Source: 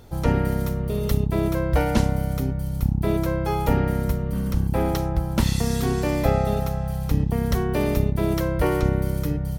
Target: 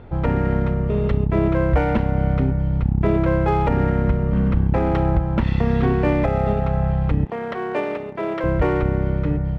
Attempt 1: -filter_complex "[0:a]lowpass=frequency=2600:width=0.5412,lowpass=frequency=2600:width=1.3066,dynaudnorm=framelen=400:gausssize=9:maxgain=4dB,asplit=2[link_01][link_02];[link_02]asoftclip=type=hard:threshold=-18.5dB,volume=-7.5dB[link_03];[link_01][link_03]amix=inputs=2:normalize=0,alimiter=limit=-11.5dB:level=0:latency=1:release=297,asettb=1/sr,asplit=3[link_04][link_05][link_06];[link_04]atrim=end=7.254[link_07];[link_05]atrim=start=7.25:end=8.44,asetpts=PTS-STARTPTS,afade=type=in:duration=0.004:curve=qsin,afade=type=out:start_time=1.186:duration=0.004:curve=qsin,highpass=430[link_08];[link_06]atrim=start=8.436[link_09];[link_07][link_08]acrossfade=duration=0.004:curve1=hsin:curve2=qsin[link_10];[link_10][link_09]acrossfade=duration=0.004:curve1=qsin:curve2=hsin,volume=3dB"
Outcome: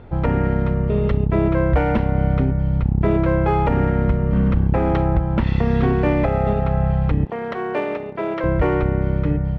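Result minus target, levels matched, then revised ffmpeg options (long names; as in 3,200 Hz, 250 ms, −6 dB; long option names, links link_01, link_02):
hard clipping: distortion −6 dB
-filter_complex "[0:a]lowpass=frequency=2600:width=0.5412,lowpass=frequency=2600:width=1.3066,dynaudnorm=framelen=400:gausssize=9:maxgain=4dB,asplit=2[link_01][link_02];[link_02]asoftclip=type=hard:threshold=-29dB,volume=-7.5dB[link_03];[link_01][link_03]amix=inputs=2:normalize=0,alimiter=limit=-11.5dB:level=0:latency=1:release=297,asettb=1/sr,asplit=3[link_04][link_05][link_06];[link_04]atrim=end=7.254[link_07];[link_05]atrim=start=7.25:end=8.44,asetpts=PTS-STARTPTS,afade=type=in:duration=0.004:curve=qsin,afade=type=out:start_time=1.186:duration=0.004:curve=qsin,highpass=430[link_08];[link_06]atrim=start=8.436[link_09];[link_07][link_08]acrossfade=duration=0.004:curve1=hsin:curve2=qsin[link_10];[link_10][link_09]acrossfade=duration=0.004:curve1=qsin:curve2=hsin,volume=3dB"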